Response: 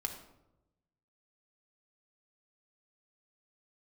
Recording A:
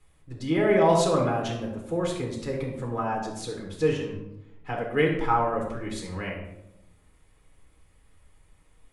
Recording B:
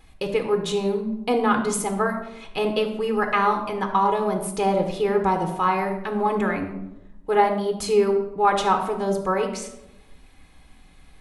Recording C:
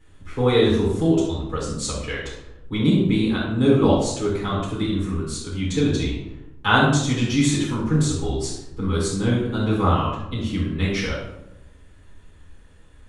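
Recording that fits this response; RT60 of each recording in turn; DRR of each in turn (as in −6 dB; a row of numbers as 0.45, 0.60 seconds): B; 0.95, 0.95, 0.95 seconds; −1.5, 3.5, −9.5 decibels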